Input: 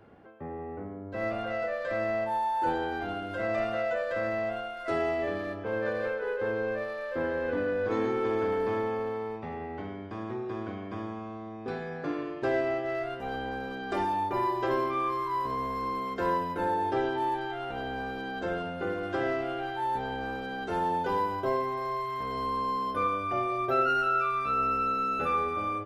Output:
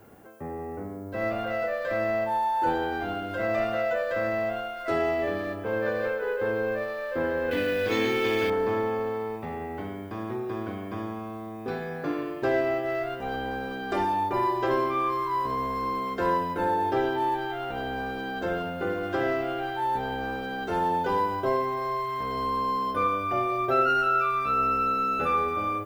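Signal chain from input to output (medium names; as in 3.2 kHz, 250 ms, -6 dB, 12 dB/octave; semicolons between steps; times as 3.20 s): added noise violet -67 dBFS; 7.51–8.50 s: resonant high shelf 1.8 kHz +11.5 dB, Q 1.5; trim +3 dB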